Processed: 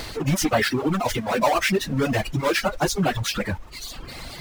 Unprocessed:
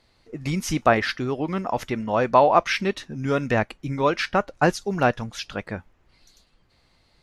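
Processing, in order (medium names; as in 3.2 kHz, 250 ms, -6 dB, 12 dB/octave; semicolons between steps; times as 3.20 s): power-law waveshaper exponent 0.35; plain phase-vocoder stretch 0.61×; reverb removal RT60 1.3 s; trim -5.5 dB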